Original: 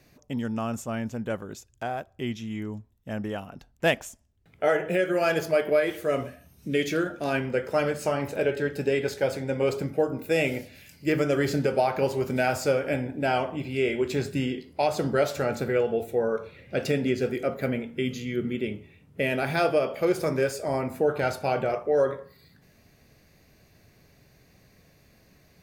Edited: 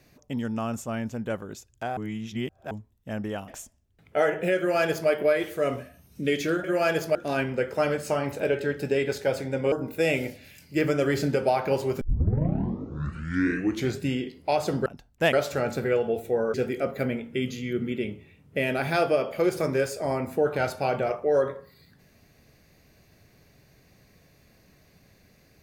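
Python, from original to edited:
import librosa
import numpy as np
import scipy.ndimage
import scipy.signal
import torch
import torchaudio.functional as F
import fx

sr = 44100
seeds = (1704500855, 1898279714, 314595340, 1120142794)

y = fx.edit(x, sr, fx.reverse_span(start_s=1.97, length_s=0.74),
    fx.move(start_s=3.48, length_s=0.47, to_s=15.17),
    fx.duplicate(start_s=5.05, length_s=0.51, to_s=7.11),
    fx.cut(start_s=9.68, length_s=0.35),
    fx.tape_start(start_s=12.32, length_s=2.01),
    fx.cut(start_s=16.38, length_s=0.79), tone=tone)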